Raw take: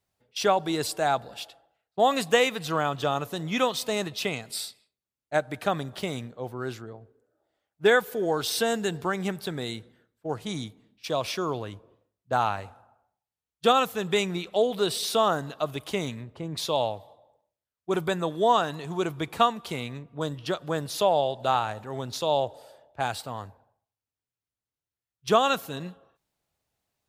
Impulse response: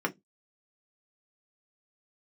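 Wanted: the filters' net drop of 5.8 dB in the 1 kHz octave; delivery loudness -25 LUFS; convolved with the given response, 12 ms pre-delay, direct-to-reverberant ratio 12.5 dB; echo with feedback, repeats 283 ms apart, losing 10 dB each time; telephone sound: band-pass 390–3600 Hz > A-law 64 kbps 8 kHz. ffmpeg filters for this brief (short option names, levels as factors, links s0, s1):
-filter_complex "[0:a]equalizer=f=1000:t=o:g=-8,aecho=1:1:283|566|849|1132:0.316|0.101|0.0324|0.0104,asplit=2[s0][s1];[1:a]atrim=start_sample=2205,adelay=12[s2];[s1][s2]afir=irnorm=-1:irlink=0,volume=0.0944[s3];[s0][s3]amix=inputs=2:normalize=0,highpass=390,lowpass=3600,volume=2" -ar 8000 -c:a pcm_alaw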